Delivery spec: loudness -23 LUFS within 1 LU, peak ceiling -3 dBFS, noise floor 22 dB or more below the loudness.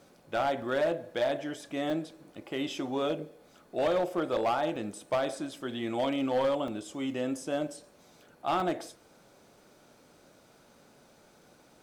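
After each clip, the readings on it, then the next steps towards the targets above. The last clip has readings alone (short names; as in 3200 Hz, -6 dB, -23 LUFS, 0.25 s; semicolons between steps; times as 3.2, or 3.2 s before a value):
clipped 1.2%; flat tops at -22.5 dBFS; dropouts 5; longest dropout 2.3 ms; loudness -32.0 LUFS; peak -22.5 dBFS; loudness target -23.0 LUFS
-> clip repair -22.5 dBFS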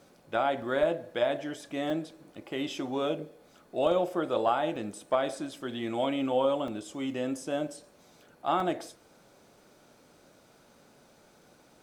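clipped 0.0%; dropouts 5; longest dropout 2.3 ms
-> interpolate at 0.62/1.9/4.76/6.68/8.6, 2.3 ms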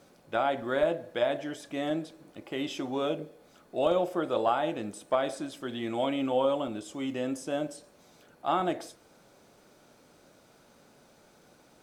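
dropouts 0; loudness -31.0 LUFS; peak -13.5 dBFS; loudness target -23.0 LUFS
-> gain +8 dB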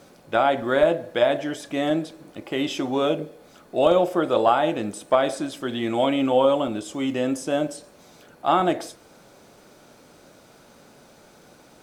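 loudness -23.0 LUFS; peak -5.5 dBFS; noise floor -52 dBFS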